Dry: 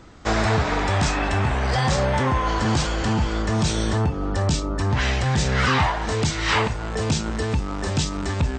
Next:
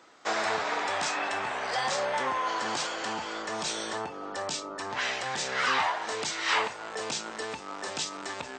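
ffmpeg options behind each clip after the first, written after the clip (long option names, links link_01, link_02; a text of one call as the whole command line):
ffmpeg -i in.wav -af "highpass=520,volume=-4.5dB" out.wav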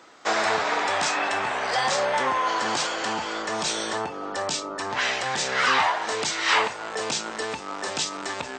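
ffmpeg -i in.wav -af "acontrast=41" out.wav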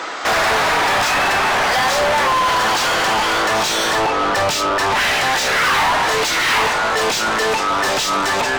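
ffmpeg -i in.wav -filter_complex "[0:a]asplit=2[link_01][link_02];[link_02]highpass=frequency=720:poles=1,volume=34dB,asoftclip=type=tanh:threshold=-9.5dB[link_03];[link_01][link_03]amix=inputs=2:normalize=0,lowpass=frequency=3500:poles=1,volume=-6dB" out.wav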